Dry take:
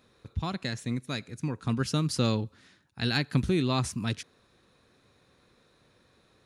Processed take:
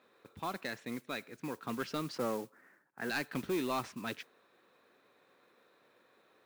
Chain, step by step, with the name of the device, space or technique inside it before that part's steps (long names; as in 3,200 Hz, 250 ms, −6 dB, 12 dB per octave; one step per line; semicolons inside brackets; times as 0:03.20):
0:02.18–0:03.10: elliptic band-pass filter 130–1,900 Hz
carbon microphone (band-pass filter 370–2,700 Hz; soft clipping −26.5 dBFS, distortion −13 dB; noise that follows the level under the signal 17 dB)